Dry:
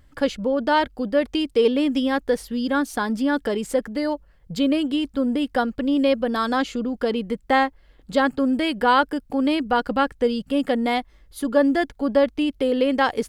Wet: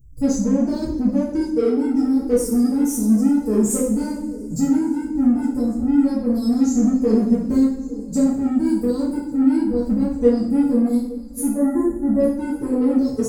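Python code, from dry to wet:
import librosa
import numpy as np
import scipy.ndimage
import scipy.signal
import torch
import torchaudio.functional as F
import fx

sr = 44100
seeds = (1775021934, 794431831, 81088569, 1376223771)

p1 = fx.bin_expand(x, sr, power=1.5)
p2 = scipy.signal.sosfilt(scipy.signal.ellip(3, 1.0, 40, [390.0, 6400.0], 'bandstop', fs=sr, output='sos'), p1)
p3 = p2 + fx.echo_swing(p2, sr, ms=1144, ratio=3, feedback_pct=45, wet_db=-20.5, dry=0)
p4 = fx.rider(p3, sr, range_db=4, speed_s=0.5)
p5 = 10.0 ** (-33.0 / 20.0) * np.tanh(p4 / 10.0 ** (-33.0 / 20.0))
p6 = p4 + F.gain(torch.from_numpy(p5), -3.5).numpy()
p7 = fx.spec_box(p6, sr, start_s=11.51, length_s=0.69, low_hz=2200.0, high_hz=6700.0, gain_db=-28)
y = fx.rev_double_slope(p7, sr, seeds[0], early_s=0.56, late_s=2.1, knee_db=-19, drr_db=-9.5)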